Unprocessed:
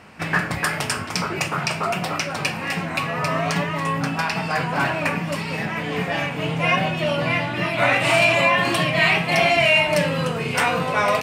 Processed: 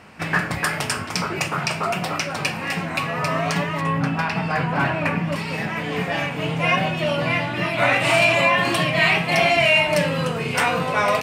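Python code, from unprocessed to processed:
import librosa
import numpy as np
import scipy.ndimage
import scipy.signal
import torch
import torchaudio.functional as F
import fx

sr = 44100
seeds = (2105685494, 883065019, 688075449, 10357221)

y = fx.bass_treble(x, sr, bass_db=4, treble_db=-9, at=(3.81, 5.36))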